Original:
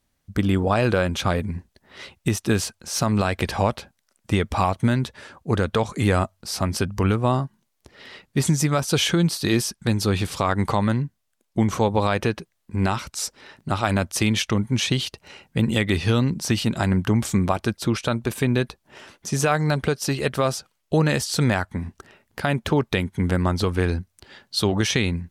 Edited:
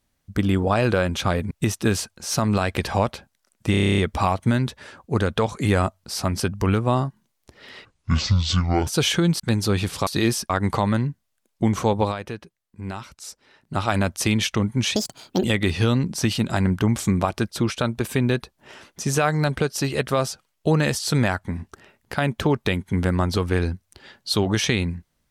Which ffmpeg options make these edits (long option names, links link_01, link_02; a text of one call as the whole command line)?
ffmpeg -i in.wav -filter_complex "[0:a]asplit=20[link_01][link_02][link_03][link_04][link_05][link_06][link_07][link_08][link_09][link_10][link_11][link_12][link_13][link_14][link_15][link_16][link_17][link_18][link_19][link_20];[link_01]atrim=end=1.512[link_21];[link_02]atrim=start=2.148:end=4.382[link_22];[link_03]atrim=start=4.348:end=4.382[link_23];[link_04]atrim=start=4.348:end=4.382[link_24];[link_05]atrim=start=4.348:end=4.382[link_25];[link_06]atrim=start=4.348:end=4.382[link_26];[link_07]atrim=start=4.348:end=4.382[link_27];[link_08]atrim=start=4.348:end=4.382[link_28];[link_09]atrim=start=4.348:end=4.382[link_29];[link_10]atrim=start=4.348:end=4.382[link_30];[link_11]atrim=start=4.348:end=8.224[link_31];[link_12]atrim=start=8.22:end=8.82,asetpts=PTS-STARTPTS,asetrate=26019,aresample=44100,atrim=end_sample=44847,asetpts=PTS-STARTPTS[link_32];[link_13]atrim=start=8.816:end=9.352[link_33];[link_14]atrim=start=9.778:end=10.452[link_34];[link_15]atrim=start=9.348:end=9.782[link_35];[link_16]atrim=start=10.448:end=12.12,asetpts=PTS-STARTPTS,afade=type=out:start_time=1.532:duration=0.14:silence=0.316228[link_36];[link_17]atrim=start=12.12:end=13.6,asetpts=PTS-STARTPTS,volume=-10dB[link_37];[link_18]atrim=start=13.6:end=14.914,asetpts=PTS-STARTPTS,afade=type=in:duration=0.14:silence=0.316228[link_38];[link_19]atrim=start=14.91:end=15.7,asetpts=PTS-STARTPTS,asetrate=72765,aresample=44100[link_39];[link_20]atrim=start=15.696[link_40];[link_21][link_22]acrossfade=duration=0.004:curve1=hsin:curve2=hsin[link_41];[link_41][link_23]acrossfade=duration=0.004:curve1=hsin:curve2=hsin[link_42];[link_42][link_24]acrossfade=duration=0.004:curve1=hsin:curve2=hsin[link_43];[link_43][link_25]acrossfade=duration=0.004:curve1=hsin:curve2=hsin[link_44];[link_44][link_26]acrossfade=duration=0.004:curve1=hsin:curve2=hsin[link_45];[link_45][link_27]acrossfade=duration=0.004:curve1=hsin:curve2=hsin[link_46];[link_46][link_28]acrossfade=duration=0.004:curve1=hsin:curve2=hsin[link_47];[link_47][link_29]acrossfade=duration=0.004:curve1=hsin:curve2=hsin[link_48];[link_48][link_30]acrossfade=duration=0.004:curve1=hsin:curve2=hsin[link_49];[link_49][link_31]acrossfade=duration=0.004:curve1=hsin:curve2=hsin[link_50];[link_50][link_32]acrossfade=duration=0.004:curve1=hsin:curve2=hsin[link_51];[link_51][link_33]acrossfade=duration=0.004:curve1=hsin:curve2=hsin[link_52];[link_52][link_34]acrossfade=duration=0.004:curve1=hsin:curve2=hsin[link_53];[link_53][link_35]acrossfade=duration=0.004:curve1=hsin:curve2=hsin[link_54];[link_36][link_37][link_38]concat=n=3:v=0:a=1[link_55];[link_54][link_55]acrossfade=duration=0.004:curve1=hsin:curve2=hsin[link_56];[link_56][link_39]acrossfade=duration=0.004:curve1=hsin:curve2=hsin[link_57];[link_57][link_40]acrossfade=duration=0.004:curve1=hsin:curve2=hsin" out.wav